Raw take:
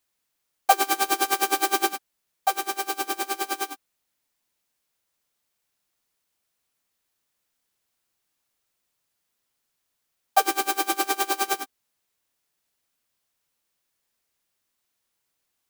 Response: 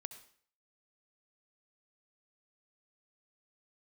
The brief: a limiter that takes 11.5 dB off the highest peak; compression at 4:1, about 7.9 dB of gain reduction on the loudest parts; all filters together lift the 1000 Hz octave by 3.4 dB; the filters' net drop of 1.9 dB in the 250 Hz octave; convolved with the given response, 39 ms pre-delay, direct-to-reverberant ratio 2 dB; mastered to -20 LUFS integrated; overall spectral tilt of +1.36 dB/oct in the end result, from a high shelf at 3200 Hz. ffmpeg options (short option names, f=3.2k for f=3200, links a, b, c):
-filter_complex "[0:a]equalizer=f=250:t=o:g=-4,equalizer=f=1k:t=o:g=4.5,highshelf=f=3.2k:g=7.5,acompressor=threshold=-19dB:ratio=4,alimiter=limit=-17dB:level=0:latency=1,asplit=2[a][b];[1:a]atrim=start_sample=2205,adelay=39[c];[b][c]afir=irnorm=-1:irlink=0,volume=2dB[d];[a][d]amix=inputs=2:normalize=0,volume=7.5dB"